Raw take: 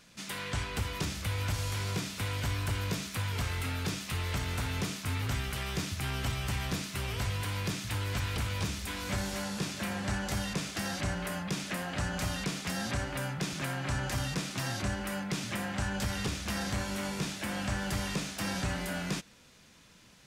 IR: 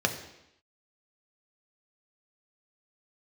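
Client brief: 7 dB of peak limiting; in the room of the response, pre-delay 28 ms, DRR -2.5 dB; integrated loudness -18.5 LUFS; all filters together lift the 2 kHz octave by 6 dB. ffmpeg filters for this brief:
-filter_complex "[0:a]equalizer=f=2000:t=o:g=7.5,alimiter=level_in=1.26:limit=0.0631:level=0:latency=1,volume=0.794,asplit=2[s0][s1];[1:a]atrim=start_sample=2205,adelay=28[s2];[s1][s2]afir=irnorm=-1:irlink=0,volume=0.398[s3];[s0][s3]amix=inputs=2:normalize=0,volume=3.55"

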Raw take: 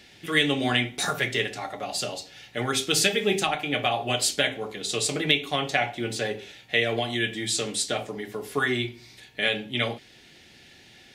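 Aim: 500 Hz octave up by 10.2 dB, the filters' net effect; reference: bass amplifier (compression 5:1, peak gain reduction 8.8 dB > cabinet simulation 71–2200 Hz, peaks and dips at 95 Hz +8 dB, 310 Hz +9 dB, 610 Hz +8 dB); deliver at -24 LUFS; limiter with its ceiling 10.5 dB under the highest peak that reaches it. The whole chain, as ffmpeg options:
-af "equalizer=f=500:t=o:g=7,alimiter=limit=0.178:level=0:latency=1,acompressor=threshold=0.0355:ratio=5,highpass=f=71:w=0.5412,highpass=f=71:w=1.3066,equalizer=f=95:t=q:w=4:g=8,equalizer=f=310:t=q:w=4:g=9,equalizer=f=610:t=q:w=4:g=8,lowpass=f=2200:w=0.5412,lowpass=f=2200:w=1.3066,volume=2.11"

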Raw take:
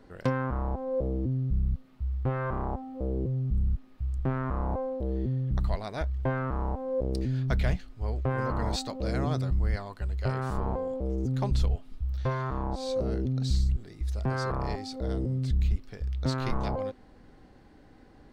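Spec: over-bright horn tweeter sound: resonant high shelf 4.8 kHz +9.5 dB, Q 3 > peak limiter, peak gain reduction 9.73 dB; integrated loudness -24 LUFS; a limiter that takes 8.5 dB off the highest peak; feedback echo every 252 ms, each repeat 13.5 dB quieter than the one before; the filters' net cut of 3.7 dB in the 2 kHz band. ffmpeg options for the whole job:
-af "equalizer=f=2000:t=o:g=-3.5,alimiter=limit=0.0668:level=0:latency=1,highshelf=f=4800:t=q:w=3:g=9.5,aecho=1:1:252|504:0.211|0.0444,volume=2.99,alimiter=limit=0.188:level=0:latency=1"

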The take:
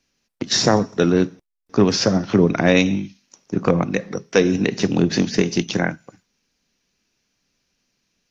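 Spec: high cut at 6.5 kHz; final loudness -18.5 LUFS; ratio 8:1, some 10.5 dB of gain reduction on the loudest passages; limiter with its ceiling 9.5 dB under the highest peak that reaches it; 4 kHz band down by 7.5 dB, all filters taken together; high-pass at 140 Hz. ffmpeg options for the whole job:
-af "highpass=140,lowpass=6500,equalizer=f=4000:t=o:g=-9,acompressor=threshold=0.0794:ratio=8,volume=3.55,alimiter=limit=0.562:level=0:latency=1"

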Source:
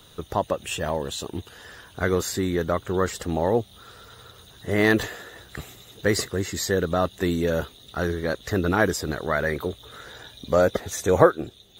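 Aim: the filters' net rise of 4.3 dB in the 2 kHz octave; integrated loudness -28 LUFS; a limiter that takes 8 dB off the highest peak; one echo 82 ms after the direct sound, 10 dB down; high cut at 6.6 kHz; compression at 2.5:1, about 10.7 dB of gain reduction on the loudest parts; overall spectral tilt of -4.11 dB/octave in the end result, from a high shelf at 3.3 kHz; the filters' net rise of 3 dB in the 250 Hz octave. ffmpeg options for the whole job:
-af "lowpass=6600,equalizer=f=250:t=o:g=4,equalizer=f=2000:t=o:g=3.5,highshelf=f=3300:g=6.5,acompressor=threshold=0.0631:ratio=2.5,alimiter=limit=0.158:level=0:latency=1,aecho=1:1:82:0.316,volume=1.19"

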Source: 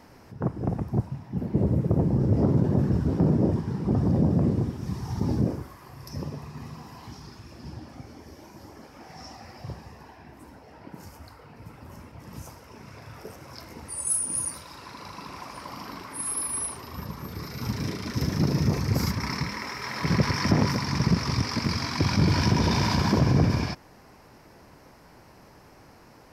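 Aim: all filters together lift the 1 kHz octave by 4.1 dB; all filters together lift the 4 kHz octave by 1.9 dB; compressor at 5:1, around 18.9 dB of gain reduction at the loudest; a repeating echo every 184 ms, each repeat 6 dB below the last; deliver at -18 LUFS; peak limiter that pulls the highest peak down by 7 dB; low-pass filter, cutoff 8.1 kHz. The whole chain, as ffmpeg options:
-af "lowpass=8100,equalizer=f=1000:t=o:g=4.5,equalizer=f=4000:t=o:g=3,acompressor=threshold=0.0112:ratio=5,alimiter=level_in=2.24:limit=0.0631:level=0:latency=1,volume=0.447,aecho=1:1:184|368|552|736|920|1104:0.501|0.251|0.125|0.0626|0.0313|0.0157,volume=15"

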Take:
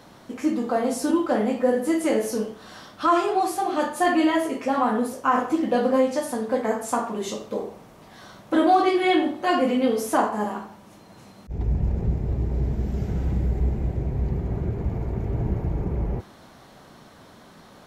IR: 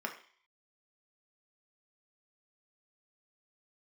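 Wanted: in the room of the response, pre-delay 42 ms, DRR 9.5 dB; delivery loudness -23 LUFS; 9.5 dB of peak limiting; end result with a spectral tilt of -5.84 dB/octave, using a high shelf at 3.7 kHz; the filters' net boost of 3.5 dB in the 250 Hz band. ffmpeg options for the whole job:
-filter_complex "[0:a]equalizer=f=250:t=o:g=4.5,highshelf=f=3700:g=5.5,alimiter=limit=0.158:level=0:latency=1,asplit=2[s0][s1];[1:a]atrim=start_sample=2205,adelay=42[s2];[s1][s2]afir=irnorm=-1:irlink=0,volume=0.224[s3];[s0][s3]amix=inputs=2:normalize=0,volume=1.33"

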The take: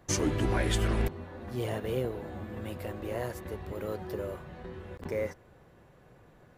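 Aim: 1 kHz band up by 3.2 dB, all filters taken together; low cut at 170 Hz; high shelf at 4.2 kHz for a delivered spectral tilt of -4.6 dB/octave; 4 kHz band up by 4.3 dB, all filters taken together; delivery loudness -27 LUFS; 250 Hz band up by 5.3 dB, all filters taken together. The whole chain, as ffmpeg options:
-af "highpass=170,equalizer=f=250:t=o:g=8,equalizer=f=1000:t=o:g=3.5,equalizer=f=4000:t=o:g=7,highshelf=f=4200:g=-3,volume=1.78"

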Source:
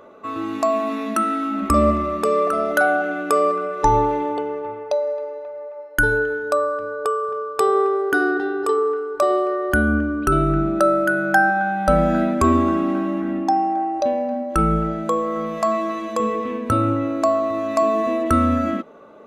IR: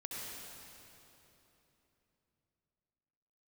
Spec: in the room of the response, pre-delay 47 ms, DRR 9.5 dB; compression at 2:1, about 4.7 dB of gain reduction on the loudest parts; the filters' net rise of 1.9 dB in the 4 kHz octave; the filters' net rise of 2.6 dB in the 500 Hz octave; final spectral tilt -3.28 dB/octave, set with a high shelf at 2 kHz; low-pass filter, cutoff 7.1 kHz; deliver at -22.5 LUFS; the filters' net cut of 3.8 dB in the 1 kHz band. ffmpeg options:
-filter_complex "[0:a]lowpass=7100,equalizer=f=500:t=o:g=5.5,equalizer=f=1000:t=o:g=-6,highshelf=f=2000:g=-5.5,equalizer=f=4000:t=o:g=8.5,acompressor=threshold=0.1:ratio=2,asplit=2[s0][s1];[1:a]atrim=start_sample=2205,adelay=47[s2];[s1][s2]afir=irnorm=-1:irlink=0,volume=0.316[s3];[s0][s3]amix=inputs=2:normalize=0,volume=1.06"

